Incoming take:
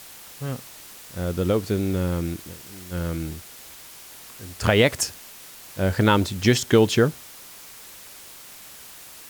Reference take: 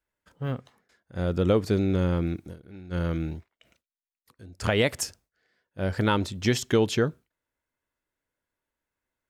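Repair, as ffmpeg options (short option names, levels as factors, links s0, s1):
-af "afwtdn=0.0071,asetnsamples=n=441:p=0,asendcmd='3.64 volume volume -5.5dB',volume=1"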